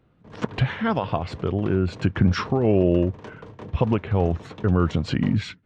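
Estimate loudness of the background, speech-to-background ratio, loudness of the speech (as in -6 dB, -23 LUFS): -42.0 LUFS, 18.5 dB, -23.5 LUFS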